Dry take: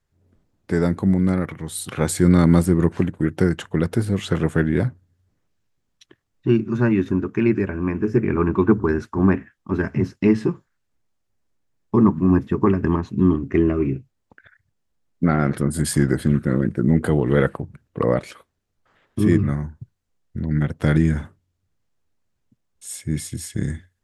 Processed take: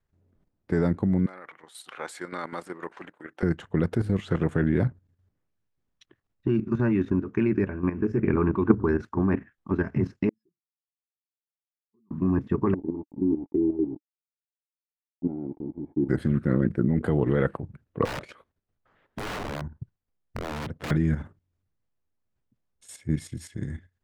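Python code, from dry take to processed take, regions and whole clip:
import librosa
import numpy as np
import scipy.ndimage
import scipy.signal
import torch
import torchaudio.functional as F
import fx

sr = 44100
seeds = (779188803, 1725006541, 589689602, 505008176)

y = fx.chain(x, sr, fx.highpass(hz=820.0, slope=12),
    fx.high_shelf(hz=4500.0, db=-4.5), at=(1.26, 3.43))
y = fx.chain(y, sr, fx.spec_expand(power=2.3),
    fx.bandpass_q(hz=5100.0, q=11.0), at=(10.29, 12.11))
y = fx.chain(y, sr, fx.peak_eq(hz=410.0, db=7.5, octaves=0.48),
    fx.sample_gate(floor_db=-24.5),
    fx.formant_cascade(vowel='u'), at=(12.74, 16.09))
y = fx.chain(y, sr, fx.high_shelf(hz=6500.0, db=-4.5),
    fx.overflow_wrap(gain_db=18.5), at=(18.05, 20.91))
y = fx.lowpass(y, sr, hz=2400.0, slope=6)
y = fx.level_steps(y, sr, step_db=11)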